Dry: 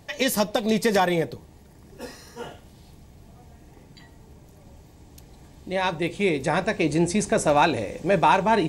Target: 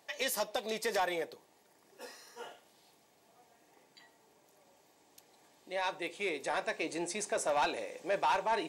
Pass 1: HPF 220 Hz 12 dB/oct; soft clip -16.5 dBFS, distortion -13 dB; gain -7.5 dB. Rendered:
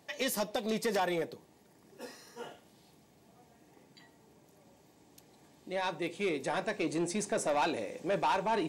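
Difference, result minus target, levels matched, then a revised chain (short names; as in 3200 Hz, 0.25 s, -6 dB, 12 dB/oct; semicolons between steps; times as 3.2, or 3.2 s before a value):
250 Hz band +6.5 dB
HPF 500 Hz 12 dB/oct; soft clip -16.5 dBFS, distortion -13 dB; gain -7.5 dB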